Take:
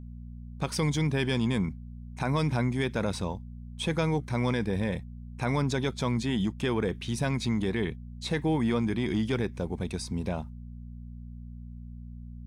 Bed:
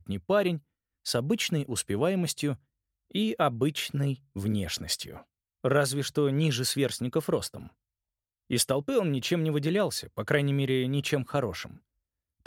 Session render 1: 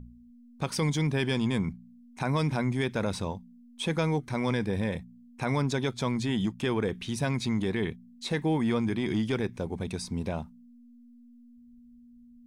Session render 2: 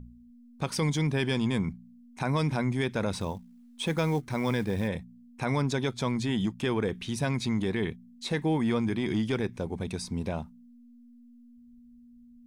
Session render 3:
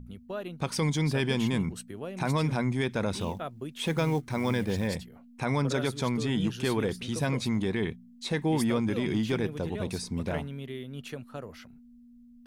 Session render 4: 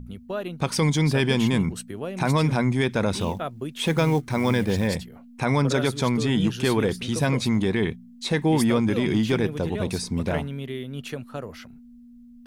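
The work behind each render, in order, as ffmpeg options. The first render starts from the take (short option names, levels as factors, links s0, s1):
-af "bandreject=f=60:t=h:w=4,bandreject=f=120:t=h:w=4,bandreject=f=180:t=h:w=4"
-filter_complex "[0:a]asettb=1/sr,asplit=3[s0][s1][s2];[s0]atrim=end=3.154[s3];[s1]atrim=start=3.15:end=4.88,asetpts=PTS-STARTPTS,afade=t=in:d=0.004:c=qsin,afade=t=out:st=1.726:d=0.004:c=qsin,acrusher=bits=7:mode=log:mix=0:aa=0.000001[s4];[s2]atrim=start=4.876[s5];[s3][s4]acrossfade=d=0.004:c1=hsin:c2=qsin[s6];[s6][s5]acrossfade=d=0.004:c1=qsin:c2=hsin"
-filter_complex "[1:a]volume=0.251[s0];[0:a][s0]amix=inputs=2:normalize=0"
-af "volume=2"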